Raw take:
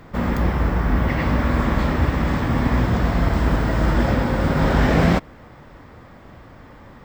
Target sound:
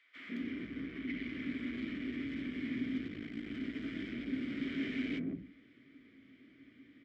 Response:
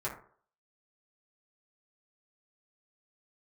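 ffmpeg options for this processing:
-filter_complex "[0:a]acrossover=split=160|810[s0][s1][s2];[s1]adelay=150[s3];[s0]adelay=260[s4];[s4][s3][s2]amix=inputs=3:normalize=0,asoftclip=type=tanh:threshold=0.112,asplit=3[s5][s6][s7];[s5]bandpass=f=270:t=q:w=8,volume=1[s8];[s6]bandpass=f=2290:t=q:w=8,volume=0.501[s9];[s7]bandpass=f=3010:t=q:w=8,volume=0.355[s10];[s8][s9][s10]amix=inputs=3:normalize=0,bandreject=f=530:w=15,asplit=2[s11][s12];[1:a]atrim=start_sample=2205[s13];[s12][s13]afir=irnorm=-1:irlink=0,volume=0.299[s14];[s11][s14]amix=inputs=2:normalize=0,asettb=1/sr,asplit=3[s15][s16][s17];[s15]atrim=end=3.074[s18];[s16]atrim=start=3.07:end=3.47,asetpts=PTS-STARTPTS,afade=t=in:d=0.004:c=qsin,afade=t=out:st=0.396:d=0.004:c=qsin,aeval=exprs='val(0)*sin(2*PI*27*n/s)':c=same[s19];[s17]atrim=start=3.466[s20];[s18][s19]acrossfade=d=0.004:c1=hsin:c2=qsin[s21];[s21][s20]acrossfade=d=0.004:c1=qsin:c2=hsin,lowshelf=f=330:g=-4.5,volume=0.841"

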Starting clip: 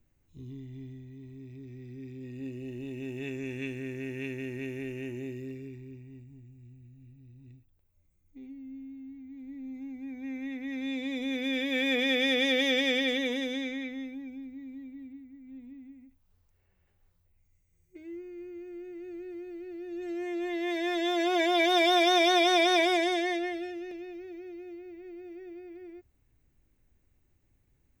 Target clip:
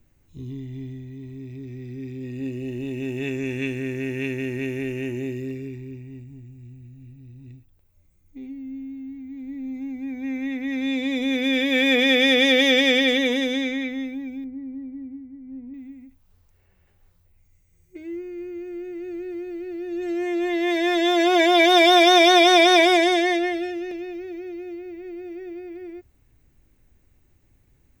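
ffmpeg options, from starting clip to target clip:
-filter_complex "[0:a]asettb=1/sr,asplit=3[s0][s1][s2];[s0]atrim=end=14.444[s3];[s1]atrim=start=14.44:end=15.74,asetpts=PTS-STARTPTS,afade=t=in:d=0.004:c=qsin,afade=t=out:st=1.296:d=0.004:c=qsin,lowpass=1100[s4];[s2]atrim=start=15.736[s5];[s3][s4]acrossfade=d=0.004:c1=hsin:c2=qsin[s6];[s6][s5]acrossfade=d=0.004:c1=qsin:c2=hsin,volume=2.82"

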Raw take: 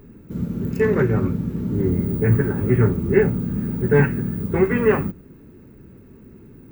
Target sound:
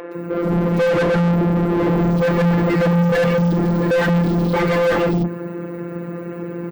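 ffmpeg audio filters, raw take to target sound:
-filter_complex "[0:a]asettb=1/sr,asplit=3[s0][s1][s2];[s0]atrim=end=2.834[s3];[s1]atrim=start=2.83:end=3.36,asetpts=PTS-STARTPTS,afade=t=in:d=0.004:c=qsin,afade=t=out:st=0.526:d=0.004:c=qsin,aecho=1:1:1.8:0.74,atrim=end_sample=23373[s4];[s2]atrim=start=3.356[s5];[s3][s4]acrossfade=d=0.004:c1=hsin:c2=qsin[s6];[s6][s5]acrossfade=d=0.004:c1=qsin:c2=hsin,afreqshift=49,acrossover=split=340|2800[s7][s8][s9];[s9]adelay=120[s10];[s7]adelay=150[s11];[s11][s8][s10]amix=inputs=3:normalize=0,afftfilt=real='hypot(re,im)*cos(PI*b)':imag='0':win_size=1024:overlap=0.75,asplit=2[s12][s13];[s13]highpass=f=720:p=1,volume=112,asoftclip=type=tanh:threshold=0.473[s14];[s12][s14]amix=inputs=2:normalize=0,lowpass=f=1500:p=1,volume=0.501,volume=0.75"

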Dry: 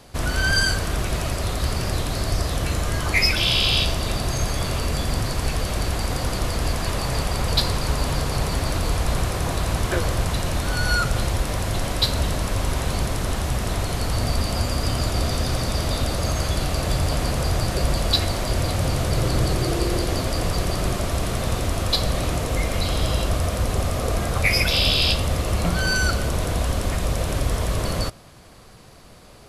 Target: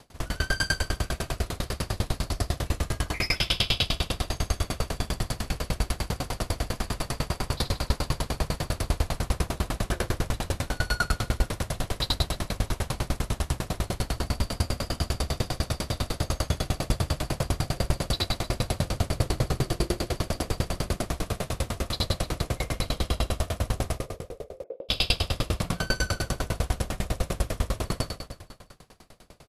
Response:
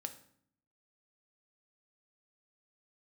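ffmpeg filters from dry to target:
-filter_complex "[0:a]asettb=1/sr,asplit=3[s0][s1][s2];[s0]atrim=end=23.984[s3];[s1]atrim=start=23.98:end=24.89,asetpts=PTS-STARTPTS,afade=t=in:d=0.004:c=qsin,afade=t=out:st=0.906:d=0.004:c=qsin,asuperpass=centerf=470:order=4:qfactor=2.8[s4];[s2]atrim=start=24.886[s5];[s3][s4]acrossfade=d=0.004:c1=hsin:c2=qsin[s6];[s6][s5]acrossfade=d=0.004:c1=qsin:c2=hsin,asplit=2[s7][s8];[s8]aecho=0:1:80|180|305|461.2|656.6:0.631|0.398|0.251|0.158|0.1[s9];[s7][s9]amix=inputs=2:normalize=0,aeval=exprs='val(0)*pow(10,-31*if(lt(mod(10*n/s,1),2*abs(10)/1000),1-mod(10*n/s,1)/(2*abs(10)/1000),(mod(10*n/s,1)-2*abs(10)/1000)/(1-2*abs(10)/1000))/20)':c=same"

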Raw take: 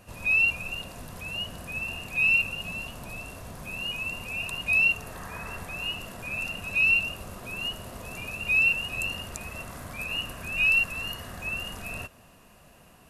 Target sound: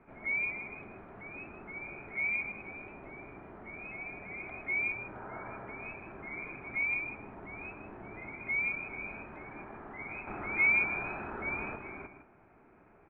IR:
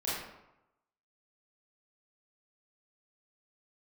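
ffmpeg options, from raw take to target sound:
-filter_complex "[0:a]asettb=1/sr,asplit=3[s0][s1][s2];[s0]atrim=end=10.274[s3];[s1]atrim=start=10.27:end=11.76,asetpts=PTS-STARTPTS,afade=t=in:d=0.004:c=qsin,afade=t=out:st=1.486:d=0.004:c=qsin,acontrast=62[s4];[s2]atrim=start=11.756[s5];[s3][s4]acrossfade=d=0.004:c1=hsin:c2=qsin[s6];[s6][s5]acrossfade=d=0.004:c1=qsin:c2=hsin,asplit=2[s7][s8];[s8]adelay=157.4,volume=0.355,highshelf=f=4000:g=-3.54[s9];[s7][s9]amix=inputs=2:normalize=0,highpass=f=330:t=q:w=0.5412,highpass=f=330:t=q:w=1.307,lowpass=f=2300:t=q:w=0.5176,lowpass=f=2300:t=q:w=0.7071,lowpass=f=2300:t=q:w=1.932,afreqshift=-320,volume=0.75"

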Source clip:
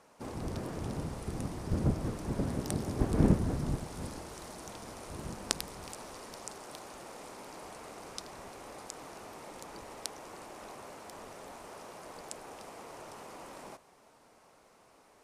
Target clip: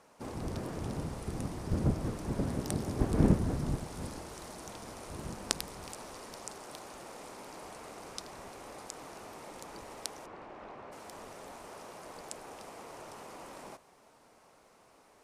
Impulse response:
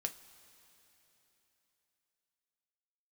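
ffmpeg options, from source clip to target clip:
-filter_complex "[0:a]asplit=3[s0][s1][s2];[s0]afade=t=out:st=10.25:d=0.02[s3];[s1]lowpass=2500,afade=t=in:st=10.25:d=0.02,afade=t=out:st=10.91:d=0.02[s4];[s2]afade=t=in:st=10.91:d=0.02[s5];[s3][s4][s5]amix=inputs=3:normalize=0"

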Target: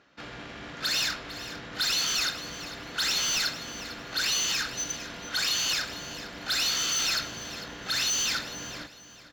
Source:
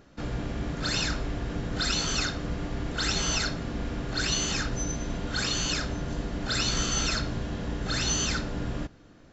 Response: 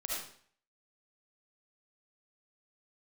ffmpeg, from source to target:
-filter_complex "[0:a]highpass=f=200:p=1,tiltshelf=f=1200:g=-9.5,asoftclip=type=hard:threshold=0.0794,adynamicsmooth=sensitivity=3:basefreq=3000,asplit=2[s0][s1];[s1]aecho=0:1:451|902|1353:0.2|0.0599|0.018[s2];[s0][s2]amix=inputs=2:normalize=0"

